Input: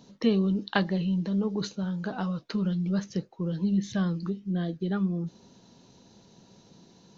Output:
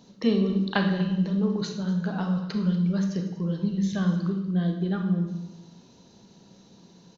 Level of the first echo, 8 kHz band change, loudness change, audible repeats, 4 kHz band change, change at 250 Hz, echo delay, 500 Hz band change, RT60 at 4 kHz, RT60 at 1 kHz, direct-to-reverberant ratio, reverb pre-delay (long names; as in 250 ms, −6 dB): −17.0 dB, can't be measured, +3.0 dB, 1, +1.5 dB, +3.0 dB, 241 ms, +1.5 dB, 0.75 s, 0.85 s, 3.5 dB, 30 ms